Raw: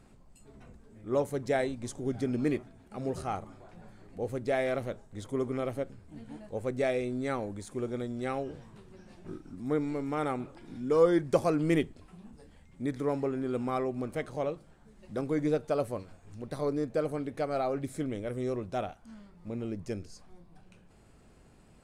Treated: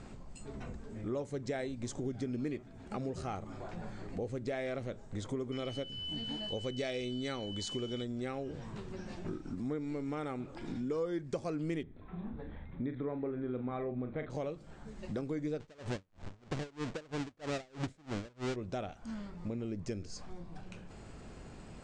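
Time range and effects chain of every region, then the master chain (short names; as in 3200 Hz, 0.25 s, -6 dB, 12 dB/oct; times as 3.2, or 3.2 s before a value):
5.51–8.03 bell 4600 Hz +12 dB 1.1 oct + whine 3000 Hz -43 dBFS
11.83–14.3 steep low-pass 3800 Hz 96 dB/oct + bell 2900 Hz -12.5 dB 0.39 oct + doubler 40 ms -9 dB
15.6–18.56 half-waves squared off + high shelf 5200 Hz -5 dB + dB-linear tremolo 3.1 Hz, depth 36 dB
whole clip: steep low-pass 8000 Hz 36 dB/oct; dynamic EQ 900 Hz, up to -5 dB, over -43 dBFS, Q 0.84; compressor 4:1, threshold -46 dBFS; gain +9 dB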